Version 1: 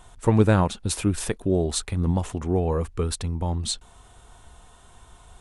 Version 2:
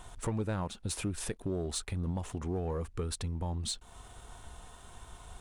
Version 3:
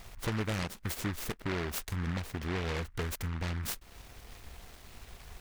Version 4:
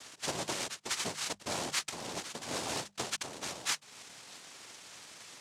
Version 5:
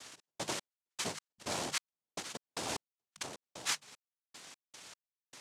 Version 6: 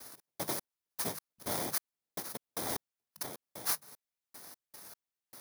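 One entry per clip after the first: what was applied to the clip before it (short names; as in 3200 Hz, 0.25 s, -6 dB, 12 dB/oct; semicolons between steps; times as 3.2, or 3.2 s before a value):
compressor 2.5:1, threshold -36 dBFS, peak gain reduction 16 dB; sample leveller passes 1; gain -3.5 dB
noise-modulated delay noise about 1400 Hz, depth 0.26 ms
tone controls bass -11 dB, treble +12 dB; noise vocoder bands 2; notches 50/100/150/200 Hz
step gate "x.x..x.xx.." 76 bpm -60 dB; gain -1 dB
FFT order left unsorted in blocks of 16 samples; gain +2 dB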